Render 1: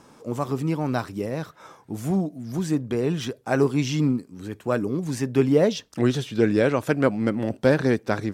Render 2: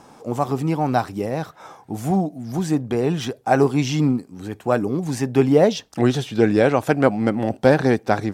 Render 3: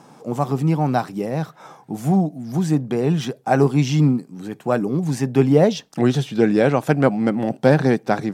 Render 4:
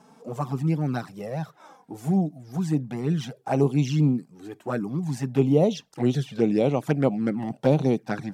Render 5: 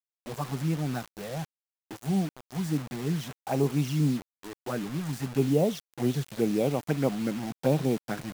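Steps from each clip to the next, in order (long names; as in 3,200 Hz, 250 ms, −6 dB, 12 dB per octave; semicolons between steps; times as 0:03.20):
parametric band 770 Hz +9.5 dB 0.37 octaves; level +3 dB
low shelf with overshoot 110 Hz −9 dB, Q 3; level −1 dB
flanger swept by the level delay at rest 4.8 ms, full sweep at −12 dBFS; level −4.5 dB
bit-depth reduction 6 bits, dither none; level −4.5 dB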